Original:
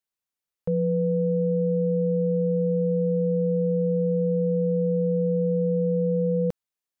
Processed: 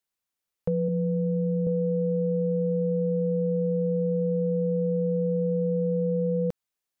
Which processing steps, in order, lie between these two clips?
0.88–1.67 s: graphic EQ 125/250/500 Hz -9/+10/-7 dB; compression, threshold -25 dBFS, peak gain reduction 5 dB; trim +2.5 dB

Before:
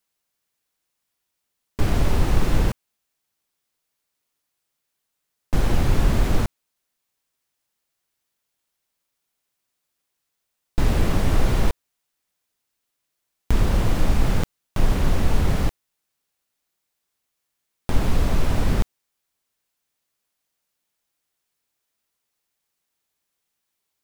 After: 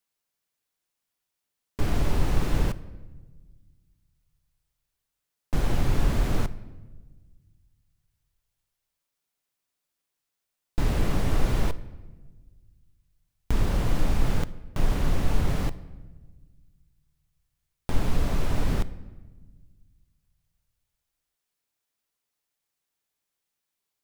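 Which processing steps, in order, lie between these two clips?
simulated room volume 1100 m³, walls mixed, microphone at 0.33 m; trim -5 dB

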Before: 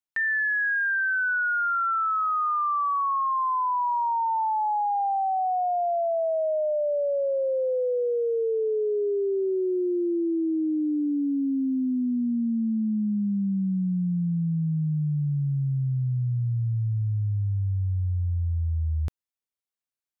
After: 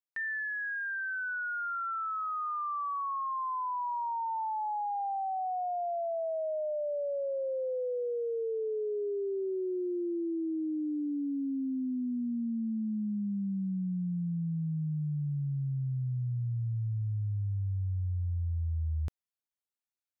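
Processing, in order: gain riding; trim -8 dB

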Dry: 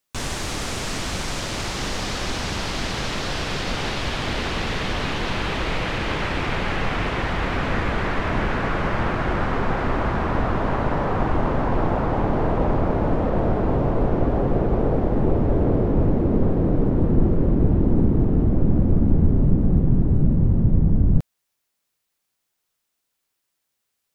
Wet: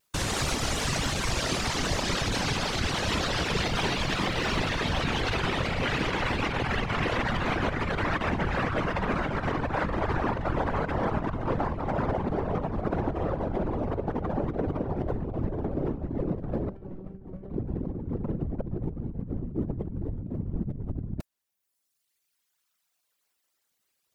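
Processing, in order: reverb removal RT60 1.9 s; compressor with a negative ratio -28 dBFS, ratio -1; peak limiter -18 dBFS, peak gain reduction 5 dB; whisper effect; 16.69–17.51 s: feedback comb 190 Hz, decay 0.35 s, harmonics all, mix 80%; vibrato 2.7 Hz 45 cents; 3.66–4.66 s: crackle 370 per s -45 dBFS

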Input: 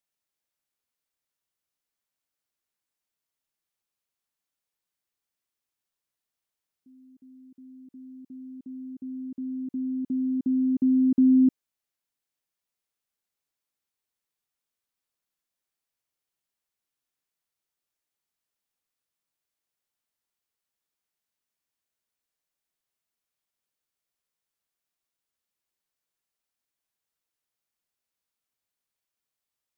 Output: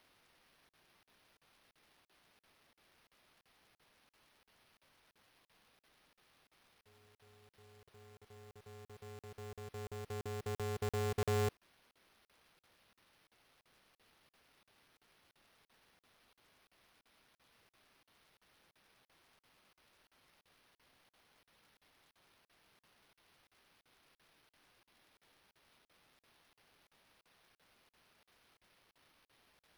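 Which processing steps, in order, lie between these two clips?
differentiator; careless resampling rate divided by 6×, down none, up hold; crackling interface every 0.34 s, samples 2048, zero, from 0.69 s; polarity switched at an audio rate 160 Hz; trim +13.5 dB

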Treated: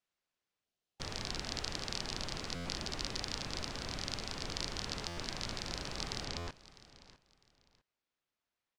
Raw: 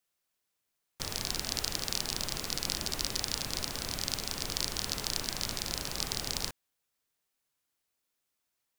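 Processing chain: treble shelf 10 kHz +2 dB, from 6.25 s -9.5 dB; 0.64–1.00 s: time-frequency box 810–2600 Hz -6 dB; distance through air 110 m; feedback delay 653 ms, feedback 25%, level -18.5 dB; buffer glitch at 2.55/5.07/6.37 s, samples 512, times 8; trim -2 dB

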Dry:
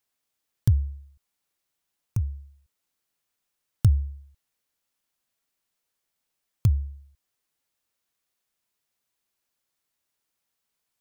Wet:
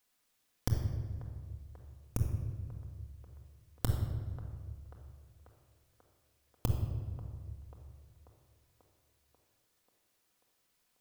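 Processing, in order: compression 10:1, threshold -33 dBFS, peak gain reduction 19 dB; on a send: feedback echo behind a band-pass 539 ms, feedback 63%, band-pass 770 Hz, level -13.5 dB; on the sum: simulated room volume 1800 m³, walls mixed, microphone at 1.9 m; trim +2.5 dB

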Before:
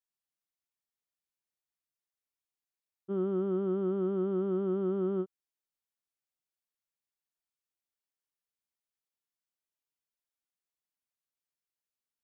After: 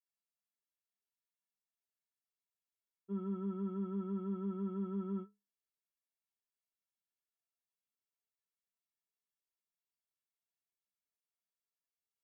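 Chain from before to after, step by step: inharmonic resonator 200 Hz, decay 0.26 s, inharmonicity 0.03; Chebyshev shaper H 2 -27 dB, 4 -36 dB, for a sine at -33.5 dBFS; trim +3.5 dB

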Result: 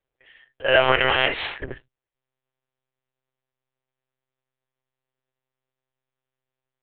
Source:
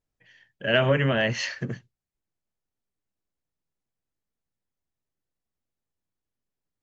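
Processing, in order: 0.80–1.56 s: spectral peaks clipped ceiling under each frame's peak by 20 dB; monotone LPC vocoder at 8 kHz 130 Hz; resonant low shelf 320 Hz -8 dB, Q 1.5; trim +4 dB

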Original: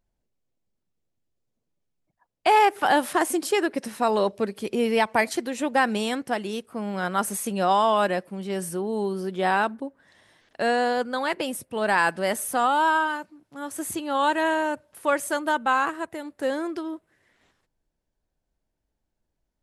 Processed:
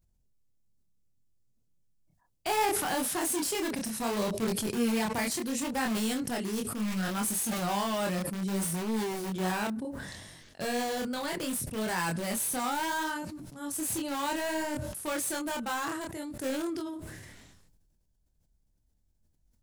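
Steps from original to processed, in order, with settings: tone controls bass +14 dB, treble +12 dB; in parallel at -5 dB: integer overflow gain 18.5 dB; on the sum: chorus 0.67 Hz, depth 6 ms; decay stretcher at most 32 dB/s; trim -9 dB

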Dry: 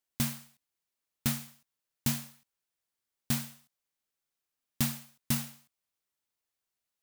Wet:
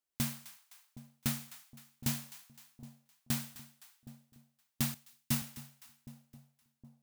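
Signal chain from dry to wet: two-band feedback delay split 780 Hz, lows 766 ms, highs 257 ms, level -15.5 dB; 4.94–5.42 s: three bands expanded up and down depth 70%; trim -3.5 dB

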